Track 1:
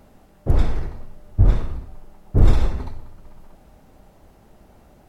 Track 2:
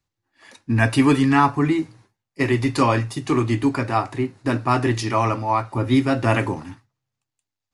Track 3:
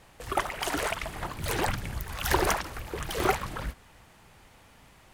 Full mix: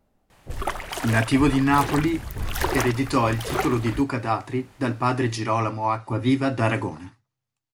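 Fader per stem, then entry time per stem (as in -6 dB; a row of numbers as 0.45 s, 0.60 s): -17.0 dB, -3.0 dB, 0.0 dB; 0.00 s, 0.35 s, 0.30 s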